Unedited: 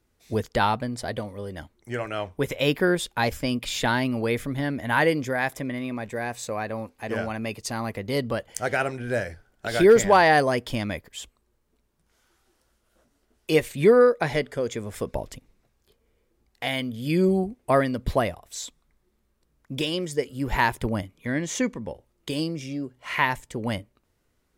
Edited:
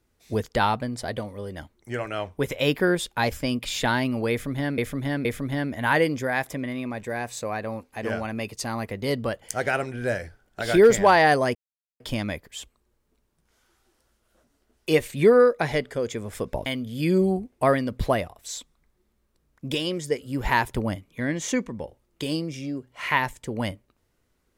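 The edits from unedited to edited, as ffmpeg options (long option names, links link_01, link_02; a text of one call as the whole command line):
ffmpeg -i in.wav -filter_complex "[0:a]asplit=5[link_01][link_02][link_03][link_04][link_05];[link_01]atrim=end=4.782[link_06];[link_02]atrim=start=4.308:end=4.782[link_07];[link_03]atrim=start=4.308:end=10.61,asetpts=PTS-STARTPTS,afade=type=out:start_time=6.298:duration=0.004:curve=hsin,apad=pad_dur=0.45[link_08];[link_04]atrim=start=10.61:end=15.272,asetpts=PTS-STARTPTS,afade=type=in:duration=0.004:curve=hsin[link_09];[link_05]atrim=start=16.728[link_10];[link_06][link_07]acrossfade=duration=0.004:curve1=hsin:curve2=hsin[link_11];[link_08][link_09]concat=n=2:v=0:a=1[link_12];[link_11][link_12]acrossfade=duration=0.004:curve1=hsin:curve2=hsin[link_13];[link_13][link_10]acrossfade=duration=0.004:curve1=hsin:curve2=hsin" out.wav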